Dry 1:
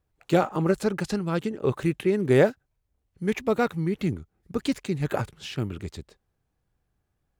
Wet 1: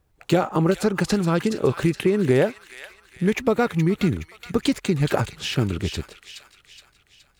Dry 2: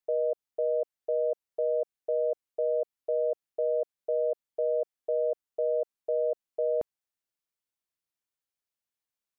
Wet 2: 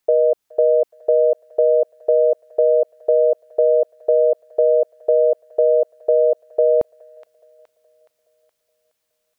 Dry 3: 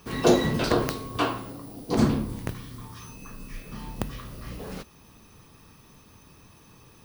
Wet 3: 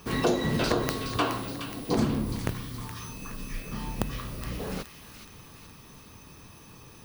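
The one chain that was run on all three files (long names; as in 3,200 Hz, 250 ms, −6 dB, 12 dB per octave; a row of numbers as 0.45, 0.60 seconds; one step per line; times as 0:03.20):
downward compressor 4 to 1, threshold −26 dBFS
delay with a high-pass on its return 420 ms, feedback 48%, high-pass 1,800 Hz, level −7 dB
normalise the peak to −6 dBFS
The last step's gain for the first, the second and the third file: +9.5, +15.0, +3.0 decibels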